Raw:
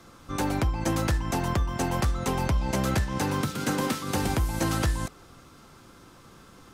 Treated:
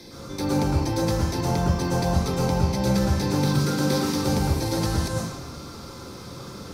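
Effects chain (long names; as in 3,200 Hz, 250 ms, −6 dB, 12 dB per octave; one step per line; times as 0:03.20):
high-shelf EQ 2,700 Hz +11 dB
reversed playback
downward compressor 12 to 1, threshold −31 dBFS, peak gain reduction 12.5 dB
reversed playback
convolution reverb RT60 1.0 s, pre-delay 105 ms, DRR −5.5 dB
level −3.5 dB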